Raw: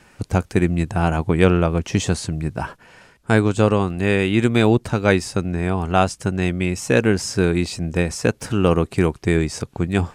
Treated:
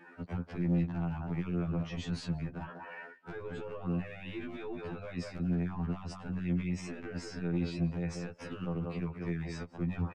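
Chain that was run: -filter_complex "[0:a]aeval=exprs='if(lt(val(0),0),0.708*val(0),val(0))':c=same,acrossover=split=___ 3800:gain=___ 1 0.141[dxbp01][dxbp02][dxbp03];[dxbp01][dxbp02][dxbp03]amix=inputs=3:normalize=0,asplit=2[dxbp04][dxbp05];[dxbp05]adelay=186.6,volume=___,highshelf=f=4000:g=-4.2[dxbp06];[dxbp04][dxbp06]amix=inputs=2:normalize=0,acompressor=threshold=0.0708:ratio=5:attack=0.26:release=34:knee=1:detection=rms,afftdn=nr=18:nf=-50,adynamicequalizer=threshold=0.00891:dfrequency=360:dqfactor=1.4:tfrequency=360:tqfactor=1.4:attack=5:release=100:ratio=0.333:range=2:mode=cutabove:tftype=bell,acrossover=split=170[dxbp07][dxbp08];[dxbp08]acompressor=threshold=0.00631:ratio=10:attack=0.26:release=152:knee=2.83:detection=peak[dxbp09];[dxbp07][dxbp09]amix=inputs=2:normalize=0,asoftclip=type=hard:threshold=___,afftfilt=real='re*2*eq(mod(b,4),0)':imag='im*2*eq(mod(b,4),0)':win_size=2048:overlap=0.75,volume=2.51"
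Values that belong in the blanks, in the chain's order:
200, 0.0708, 0.158, 0.0168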